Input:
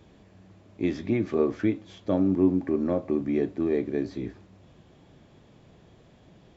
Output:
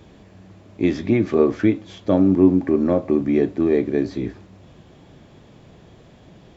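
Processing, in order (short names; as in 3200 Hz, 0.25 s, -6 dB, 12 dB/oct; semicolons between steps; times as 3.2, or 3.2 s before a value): gain +7.5 dB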